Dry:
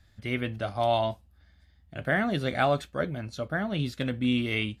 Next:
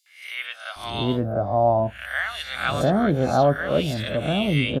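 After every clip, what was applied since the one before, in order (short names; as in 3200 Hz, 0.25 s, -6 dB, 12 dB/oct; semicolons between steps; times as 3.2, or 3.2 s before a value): spectral swells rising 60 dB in 0.49 s; three bands offset in time highs, mids, lows 60/760 ms, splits 1100/4800 Hz; dynamic EQ 2000 Hz, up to -6 dB, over -44 dBFS, Q 1.5; gain +7.5 dB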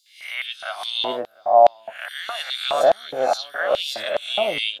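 LFO high-pass square 2.4 Hz 680–3700 Hz; gain +2 dB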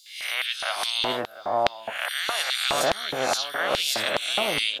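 spectral compressor 2:1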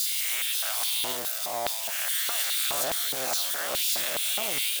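switching spikes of -12 dBFS; gain -9 dB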